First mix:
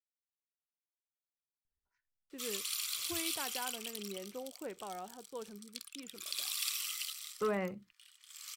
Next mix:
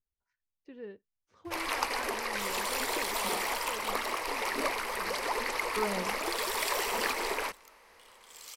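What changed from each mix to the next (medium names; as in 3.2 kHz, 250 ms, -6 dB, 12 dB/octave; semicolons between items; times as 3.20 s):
speech: entry -1.65 s; first sound: unmuted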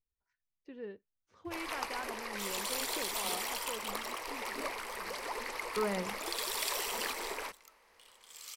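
first sound -7.0 dB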